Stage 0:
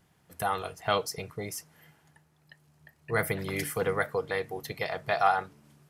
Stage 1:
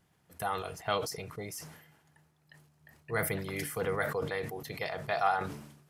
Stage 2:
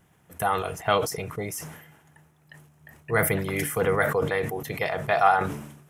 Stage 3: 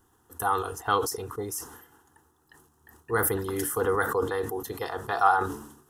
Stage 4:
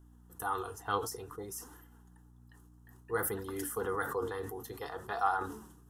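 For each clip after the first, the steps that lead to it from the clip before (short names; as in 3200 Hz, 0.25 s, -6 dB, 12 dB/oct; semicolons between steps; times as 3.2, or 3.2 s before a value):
sustainer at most 67 dB/s; gain -4.5 dB
bell 4500 Hz -10.5 dB 0.49 oct; gain +9 dB
fixed phaser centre 610 Hz, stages 6; gain +1.5 dB
hum 60 Hz, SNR 19 dB; flange 0.56 Hz, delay 2.8 ms, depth 7.6 ms, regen +57%; gain -4.5 dB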